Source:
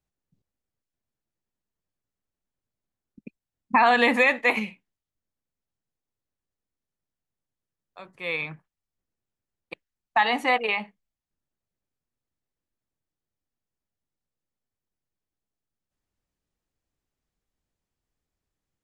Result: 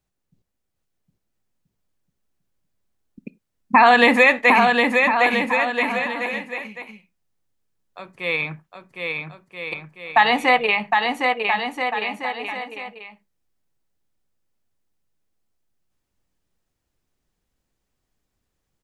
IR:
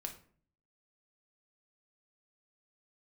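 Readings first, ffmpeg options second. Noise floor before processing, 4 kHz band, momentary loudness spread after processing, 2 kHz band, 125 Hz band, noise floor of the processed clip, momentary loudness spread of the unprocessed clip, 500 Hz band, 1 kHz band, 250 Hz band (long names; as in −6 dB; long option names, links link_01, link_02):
below −85 dBFS, +8.0 dB, 18 LU, +8.0 dB, +8.5 dB, −78 dBFS, 13 LU, +8.0 dB, +8.0 dB, +8.0 dB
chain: -filter_complex "[0:a]aecho=1:1:760|1330|1758|2078|2319:0.631|0.398|0.251|0.158|0.1,asplit=2[link_01][link_02];[1:a]atrim=start_sample=2205,afade=type=out:start_time=0.15:duration=0.01,atrim=end_sample=7056[link_03];[link_02][link_03]afir=irnorm=-1:irlink=0,volume=-12dB[link_04];[link_01][link_04]amix=inputs=2:normalize=0,volume=4.5dB"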